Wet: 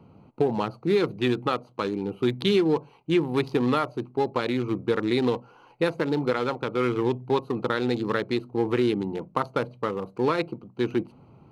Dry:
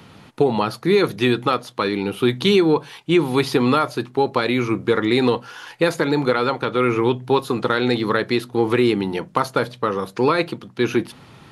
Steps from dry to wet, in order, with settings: local Wiener filter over 25 samples; trim -5.5 dB

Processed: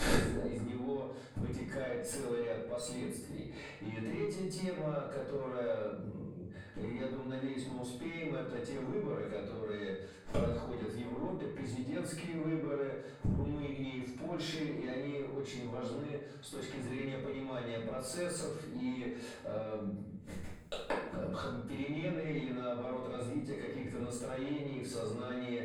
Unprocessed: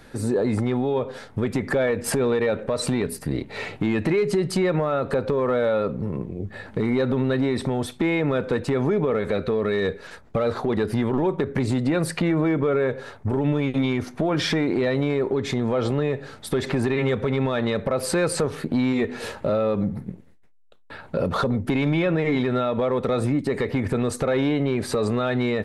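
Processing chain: peaking EQ 7 kHz +8.5 dB 1.2 oct; band-stop 5.7 kHz, Q 7.4; valve stage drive 16 dB, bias 0.25; inverted gate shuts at -32 dBFS, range -34 dB; reverberation RT60 0.70 s, pre-delay 3 ms, DRR -8.5 dB; trim +9 dB

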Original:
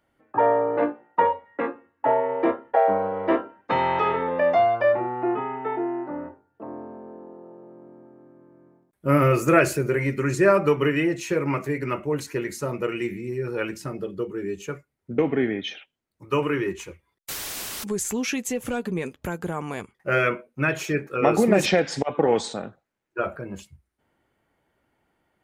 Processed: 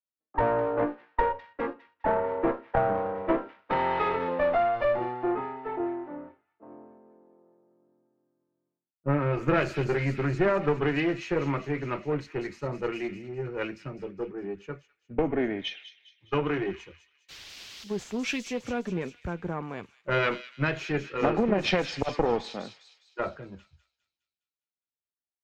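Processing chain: single-diode clipper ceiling -23.5 dBFS; distance through air 220 m; feedback echo behind a high-pass 205 ms, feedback 69%, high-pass 3.5 kHz, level -3.5 dB; compression, threshold -22 dBFS, peak gain reduction 7.5 dB; three bands expanded up and down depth 100%

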